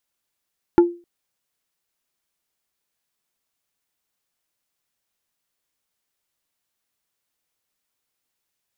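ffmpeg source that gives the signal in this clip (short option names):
-f lavfi -i "aevalsrc='0.531*pow(10,-3*t/0.32)*sin(2*PI*346*t)+0.188*pow(10,-3*t/0.107)*sin(2*PI*865*t)+0.0668*pow(10,-3*t/0.061)*sin(2*PI*1384*t)+0.0237*pow(10,-3*t/0.046)*sin(2*PI*1730*t)+0.00841*pow(10,-3*t/0.034)*sin(2*PI*2249*t)':d=0.26:s=44100"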